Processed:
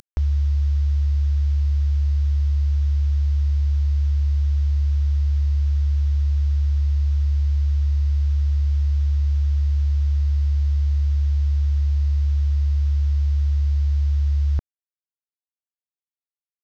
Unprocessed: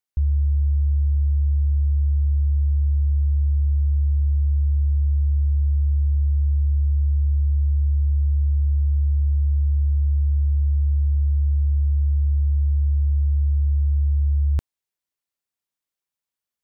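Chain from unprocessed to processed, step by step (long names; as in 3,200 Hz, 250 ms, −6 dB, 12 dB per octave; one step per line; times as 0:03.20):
variable-slope delta modulation 32 kbit/s
upward compression, threshold −24 dBFS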